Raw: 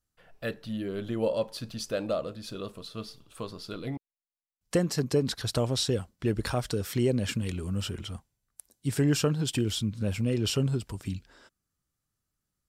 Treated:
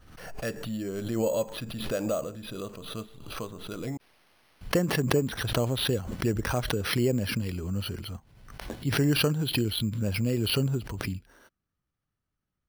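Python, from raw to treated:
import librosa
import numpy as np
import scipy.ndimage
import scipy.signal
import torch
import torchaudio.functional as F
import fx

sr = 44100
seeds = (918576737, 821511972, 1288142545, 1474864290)

y = np.repeat(scipy.signal.resample_poly(x, 1, 6), 6)[:len(x)]
y = fx.pre_swell(y, sr, db_per_s=57.0)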